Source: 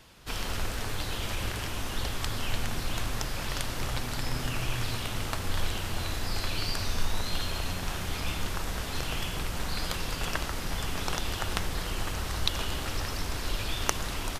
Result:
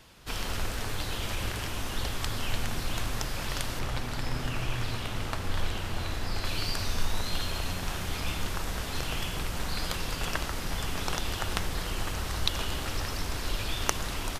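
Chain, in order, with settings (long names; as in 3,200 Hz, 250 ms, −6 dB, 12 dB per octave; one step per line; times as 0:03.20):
0:03.79–0:06.45: high-shelf EQ 5,000 Hz −7 dB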